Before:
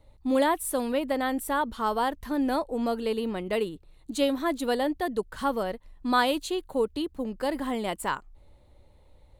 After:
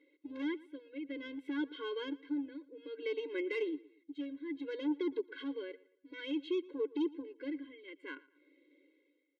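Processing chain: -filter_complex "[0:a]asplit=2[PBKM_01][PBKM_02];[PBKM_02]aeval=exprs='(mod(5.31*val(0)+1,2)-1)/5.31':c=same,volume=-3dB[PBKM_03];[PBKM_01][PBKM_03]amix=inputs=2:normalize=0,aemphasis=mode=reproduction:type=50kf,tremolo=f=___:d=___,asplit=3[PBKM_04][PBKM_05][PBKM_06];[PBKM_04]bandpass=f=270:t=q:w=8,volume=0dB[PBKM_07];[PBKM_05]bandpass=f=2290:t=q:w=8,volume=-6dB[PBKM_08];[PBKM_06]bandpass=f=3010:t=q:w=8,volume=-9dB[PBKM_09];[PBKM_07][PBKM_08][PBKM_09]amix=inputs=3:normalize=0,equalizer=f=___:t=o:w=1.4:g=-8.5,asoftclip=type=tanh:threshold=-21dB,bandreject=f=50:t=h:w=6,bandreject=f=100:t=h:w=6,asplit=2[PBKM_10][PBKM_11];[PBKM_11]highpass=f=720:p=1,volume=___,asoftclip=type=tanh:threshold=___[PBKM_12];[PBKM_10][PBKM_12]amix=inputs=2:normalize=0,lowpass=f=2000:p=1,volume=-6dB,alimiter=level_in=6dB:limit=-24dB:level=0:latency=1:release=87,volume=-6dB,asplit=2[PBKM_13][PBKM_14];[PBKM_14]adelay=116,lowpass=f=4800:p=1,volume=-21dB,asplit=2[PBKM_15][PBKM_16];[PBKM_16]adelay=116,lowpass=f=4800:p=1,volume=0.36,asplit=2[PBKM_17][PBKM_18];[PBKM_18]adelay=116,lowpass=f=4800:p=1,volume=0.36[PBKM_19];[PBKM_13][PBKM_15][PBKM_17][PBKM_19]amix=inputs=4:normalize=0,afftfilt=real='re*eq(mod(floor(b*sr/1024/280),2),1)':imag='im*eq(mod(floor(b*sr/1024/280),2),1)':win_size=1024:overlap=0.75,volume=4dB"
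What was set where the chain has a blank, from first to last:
0.58, 0.89, 8100, 19dB, -22.5dB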